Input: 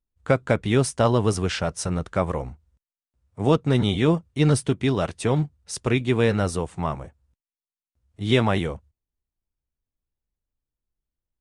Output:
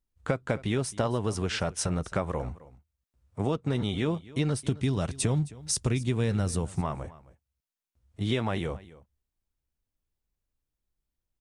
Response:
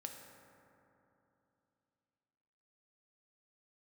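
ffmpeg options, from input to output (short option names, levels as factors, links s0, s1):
-filter_complex "[0:a]asettb=1/sr,asplit=3[s0][s1][s2];[s0]atrim=end=4.644[s3];[s1]atrim=start=4.64:end=6.81,asetpts=PTS-STARTPTS,afade=t=in:d=0.004:c=qsin,afade=t=out:st=2.166:d=0.004:c=qsin,bass=f=250:g=9,treble=f=4000:g=8[s4];[s2]atrim=start=6.806[s5];[s3][s4]acrossfade=d=0.004:c1=hsin:c2=qsin[s6];[s6][s5]acrossfade=d=0.004:c1=qsin:c2=hsin,acompressor=threshold=0.0447:ratio=5,aecho=1:1:265:0.106,volume=1.19"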